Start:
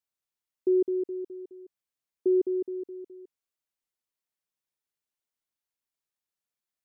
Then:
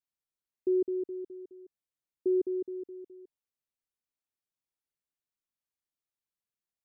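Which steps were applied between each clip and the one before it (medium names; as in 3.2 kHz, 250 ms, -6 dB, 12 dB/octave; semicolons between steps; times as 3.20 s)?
bass shelf 390 Hz +7 dB; trim -7.5 dB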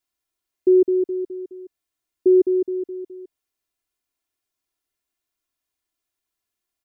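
comb 2.9 ms; trim +8.5 dB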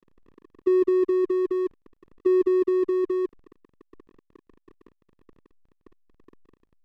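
spectral levelling over time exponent 0.2; hysteresis with a dead band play -19.5 dBFS; trim -5.5 dB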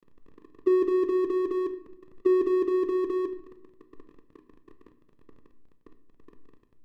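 reverberation RT60 0.80 s, pre-delay 7 ms, DRR 8.5 dB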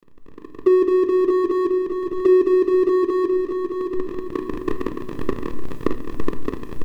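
recorder AGC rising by 16 dB/s; on a send: feedback delay 617 ms, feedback 42%, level -6 dB; on the sum: trim +7 dB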